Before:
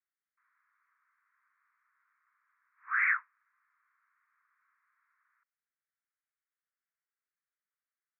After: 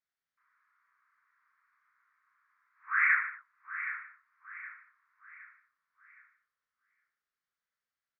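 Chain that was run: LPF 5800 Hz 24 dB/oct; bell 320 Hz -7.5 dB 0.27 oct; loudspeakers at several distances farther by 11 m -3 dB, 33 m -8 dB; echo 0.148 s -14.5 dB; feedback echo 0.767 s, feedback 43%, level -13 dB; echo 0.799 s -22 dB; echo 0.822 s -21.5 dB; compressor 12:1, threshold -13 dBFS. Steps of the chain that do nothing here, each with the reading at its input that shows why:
LPF 5800 Hz: input band ends at 2700 Hz; bell 320 Hz: input band starts at 910 Hz; compressor, threshold -13 dBFS: input peak -14.5 dBFS

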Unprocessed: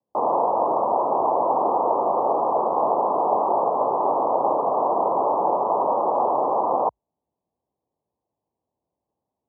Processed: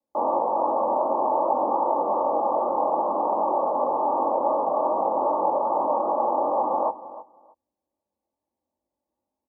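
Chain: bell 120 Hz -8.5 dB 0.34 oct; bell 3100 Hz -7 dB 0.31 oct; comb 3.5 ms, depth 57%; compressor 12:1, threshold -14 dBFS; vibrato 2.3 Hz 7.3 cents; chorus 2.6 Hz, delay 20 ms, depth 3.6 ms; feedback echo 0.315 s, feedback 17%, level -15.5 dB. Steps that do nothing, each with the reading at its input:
bell 3100 Hz: input band ends at 1400 Hz

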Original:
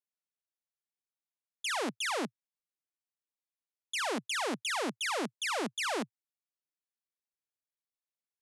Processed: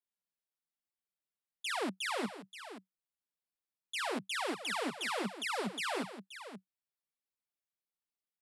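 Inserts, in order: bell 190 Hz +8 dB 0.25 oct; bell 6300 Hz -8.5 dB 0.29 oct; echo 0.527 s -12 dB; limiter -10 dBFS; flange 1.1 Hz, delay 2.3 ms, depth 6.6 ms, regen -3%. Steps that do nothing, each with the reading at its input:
limiter -10 dBFS: input peak -22.0 dBFS

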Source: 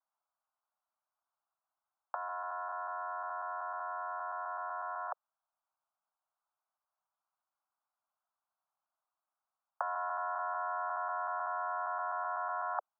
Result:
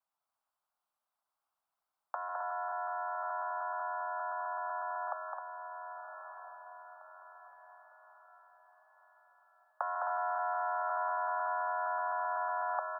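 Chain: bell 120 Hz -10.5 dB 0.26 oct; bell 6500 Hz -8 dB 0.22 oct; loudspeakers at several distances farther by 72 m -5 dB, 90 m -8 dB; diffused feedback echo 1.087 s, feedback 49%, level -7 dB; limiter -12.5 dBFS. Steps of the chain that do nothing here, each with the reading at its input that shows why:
bell 120 Hz: input band starts at 540 Hz; bell 6500 Hz: input band ends at 1800 Hz; limiter -12.5 dBFS: input peak -19.5 dBFS

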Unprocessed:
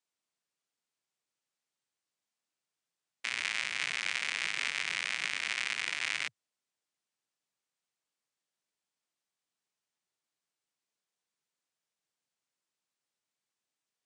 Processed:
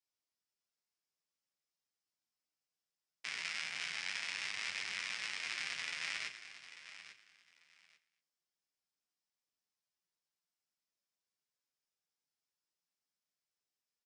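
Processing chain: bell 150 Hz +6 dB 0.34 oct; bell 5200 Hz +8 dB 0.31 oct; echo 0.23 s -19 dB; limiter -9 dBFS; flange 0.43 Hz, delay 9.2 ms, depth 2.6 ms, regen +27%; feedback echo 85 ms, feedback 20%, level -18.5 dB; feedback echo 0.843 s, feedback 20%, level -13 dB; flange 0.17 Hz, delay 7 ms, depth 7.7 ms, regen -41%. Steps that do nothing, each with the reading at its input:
limiter -9 dBFS: input peak -12.5 dBFS

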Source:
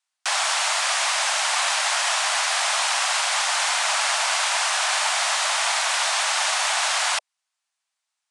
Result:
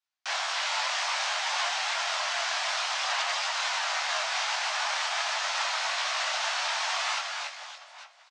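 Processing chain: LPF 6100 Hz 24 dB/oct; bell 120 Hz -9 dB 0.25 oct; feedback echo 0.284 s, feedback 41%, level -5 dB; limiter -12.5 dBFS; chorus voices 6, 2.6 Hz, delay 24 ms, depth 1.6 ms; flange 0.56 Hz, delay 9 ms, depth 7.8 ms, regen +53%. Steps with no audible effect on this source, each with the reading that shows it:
bell 120 Hz: input band starts at 480 Hz

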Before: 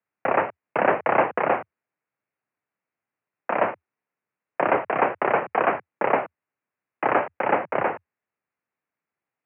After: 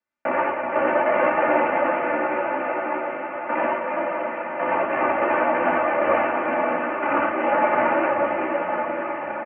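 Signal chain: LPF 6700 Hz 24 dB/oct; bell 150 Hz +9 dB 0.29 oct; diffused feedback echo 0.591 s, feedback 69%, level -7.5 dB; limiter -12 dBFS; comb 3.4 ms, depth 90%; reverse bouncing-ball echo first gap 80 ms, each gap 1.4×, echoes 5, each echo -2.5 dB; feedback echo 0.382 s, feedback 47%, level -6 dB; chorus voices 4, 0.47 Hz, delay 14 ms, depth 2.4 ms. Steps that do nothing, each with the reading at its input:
LPF 6700 Hz: input band ends at 2900 Hz

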